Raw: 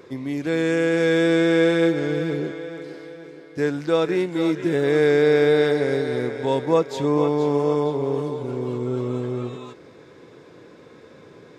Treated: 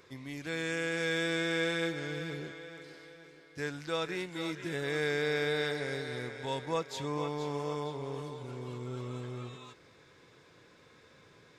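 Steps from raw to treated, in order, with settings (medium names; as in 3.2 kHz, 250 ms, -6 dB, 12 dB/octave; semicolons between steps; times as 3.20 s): peaking EQ 340 Hz -13 dB 2.9 oct; trim -4 dB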